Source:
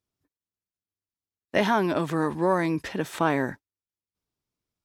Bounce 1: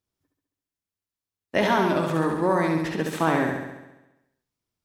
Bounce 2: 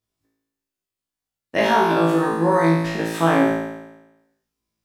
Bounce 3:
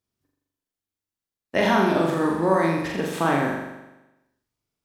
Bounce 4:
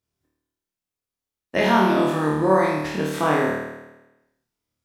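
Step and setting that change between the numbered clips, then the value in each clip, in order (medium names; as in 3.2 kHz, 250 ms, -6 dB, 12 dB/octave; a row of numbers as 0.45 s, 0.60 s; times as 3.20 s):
flutter echo, walls apart: 11.7 m, 3.1 m, 7.2 m, 4.5 m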